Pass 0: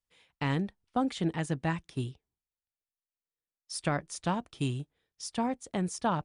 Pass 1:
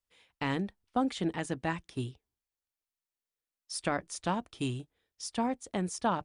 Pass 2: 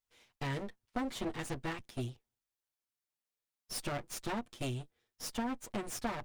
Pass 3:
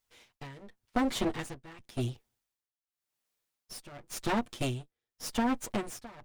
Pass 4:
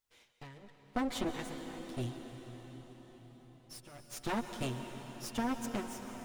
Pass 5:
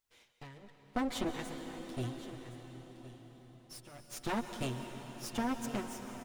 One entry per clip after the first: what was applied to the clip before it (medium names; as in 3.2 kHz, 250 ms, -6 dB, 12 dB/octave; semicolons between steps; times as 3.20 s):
peaking EQ 150 Hz -12 dB 0.25 oct
comb filter that takes the minimum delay 8.4 ms; compression, threshold -32 dBFS, peak gain reduction 6.5 dB
tremolo 0.9 Hz, depth 91%; trim +8.5 dB
reverberation RT60 5.8 s, pre-delay 115 ms, DRR 6 dB; trim -5.5 dB
delay 1066 ms -15.5 dB